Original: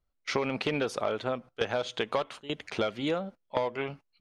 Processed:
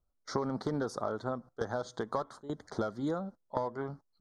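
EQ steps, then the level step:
Butterworth band-reject 2,600 Hz, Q 0.74
high-shelf EQ 9,100 Hz −12 dB
dynamic equaliser 540 Hz, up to −6 dB, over −43 dBFS, Q 1.3
0.0 dB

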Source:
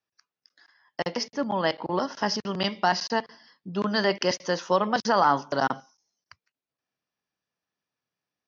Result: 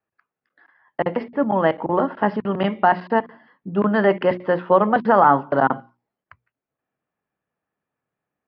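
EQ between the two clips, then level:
Gaussian smoothing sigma 4.1 samples
mains-hum notches 60/120/180/240/300/360 Hz
notch filter 1,000 Hz, Q 23
+8.5 dB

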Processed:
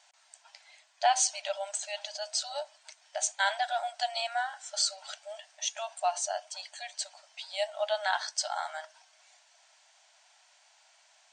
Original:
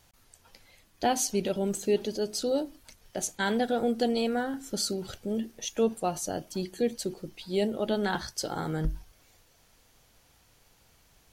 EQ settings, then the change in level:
linear-phase brick-wall band-pass 580–9,000 Hz
notch filter 1,200 Hz, Q 7.9
+3.0 dB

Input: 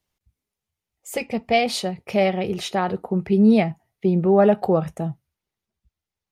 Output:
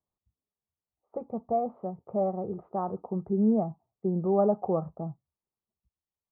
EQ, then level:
Chebyshev low-pass filter 1,200 Hz, order 5
low-shelf EQ 68 Hz −9.5 dB
−7.5 dB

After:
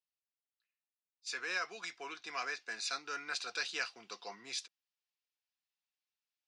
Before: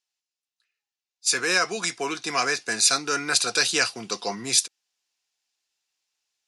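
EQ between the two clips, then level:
first difference
head-to-tape spacing loss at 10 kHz 43 dB
+6.5 dB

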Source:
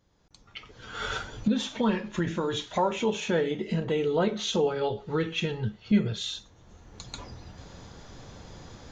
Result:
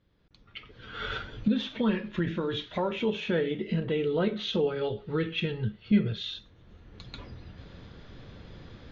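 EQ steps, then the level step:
low-pass filter 3,900 Hz 24 dB per octave
parametric band 840 Hz −8.5 dB 0.89 octaves
0.0 dB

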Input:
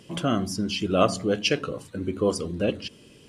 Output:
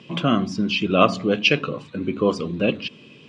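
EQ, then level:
high-frequency loss of the air 130 metres
loudspeaker in its box 130–9,600 Hz, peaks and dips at 150 Hz +6 dB, 230 Hz +4 dB, 1,100 Hz +6 dB, 2,500 Hz +10 dB, 3,700 Hz +7 dB
+3.0 dB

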